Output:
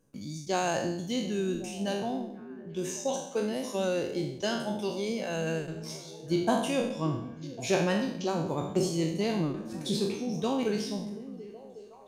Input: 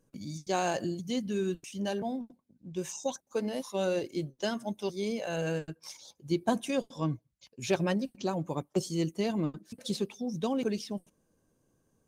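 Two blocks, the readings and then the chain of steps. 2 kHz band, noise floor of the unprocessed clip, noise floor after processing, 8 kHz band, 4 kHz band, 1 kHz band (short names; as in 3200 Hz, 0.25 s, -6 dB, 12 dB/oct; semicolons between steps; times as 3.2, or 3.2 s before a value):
+3.0 dB, -75 dBFS, -47 dBFS, +3.5 dB, +3.5 dB, +2.5 dB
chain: spectral trails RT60 0.69 s; delay with a stepping band-pass 0.367 s, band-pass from 200 Hz, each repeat 0.7 oct, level -9.5 dB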